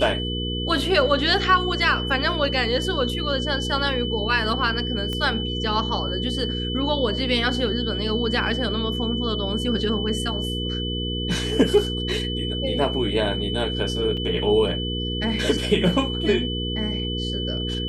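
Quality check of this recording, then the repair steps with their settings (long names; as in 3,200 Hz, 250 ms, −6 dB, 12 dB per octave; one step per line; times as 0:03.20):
mains hum 60 Hz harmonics 8 −28 dBFS
whistle 3,000 Hz −29 dBFS
0:05.13: click −16 dBFS
0:14.17: drop-out 4.7 ms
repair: click removal
notch filter 3,000 Hz, Q 30
hum removal 60 Hz, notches 8
repair the gap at 0:14.17, 4.7 ms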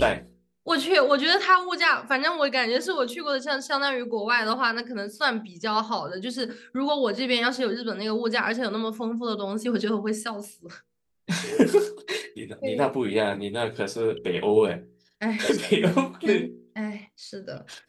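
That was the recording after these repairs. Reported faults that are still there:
none of them is left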